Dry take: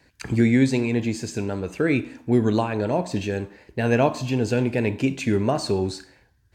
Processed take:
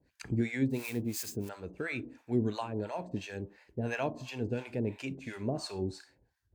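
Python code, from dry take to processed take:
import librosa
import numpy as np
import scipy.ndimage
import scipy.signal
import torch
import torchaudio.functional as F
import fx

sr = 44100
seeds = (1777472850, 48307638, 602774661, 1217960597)

y = fx.crossing_spikes(x, sr, level_db=-23.0, at=(0.68, 1.49))
y = fx.harmonic_tremolo(y, sr, hz=2.9, depth_pct=100, crossover_hz=650.0)
y = y * librosa.db_to_amplitude(-7.5)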